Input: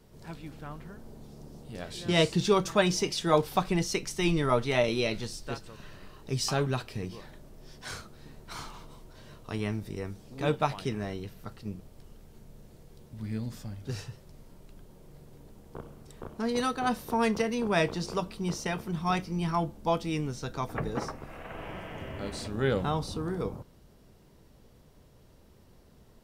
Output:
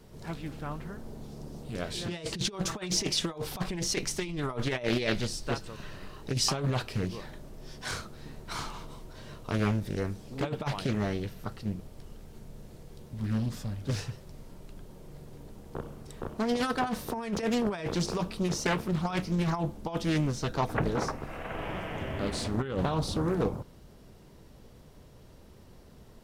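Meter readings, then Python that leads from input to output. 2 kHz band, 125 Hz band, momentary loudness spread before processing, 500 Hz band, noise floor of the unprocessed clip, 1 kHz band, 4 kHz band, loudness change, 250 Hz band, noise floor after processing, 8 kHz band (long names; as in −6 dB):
−1.5 dB, +1.5 dB, 21 LU, −3.5 dB, −57 dBFS, −3.0 dB, +1.0 dB, −1.5 dB, +0.5 dB, −53 dBFS, +3.0 dB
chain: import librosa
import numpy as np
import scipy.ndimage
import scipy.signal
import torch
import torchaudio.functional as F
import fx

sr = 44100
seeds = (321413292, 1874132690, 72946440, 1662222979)

y = fx.over_compress(x, sr, threshold_db=-30.0, ratio=-0.5)
y = fx.doppler_dist(y, sr, depth_ms=0.54)
y = y * 10.0 ** (2.0 / 20.0)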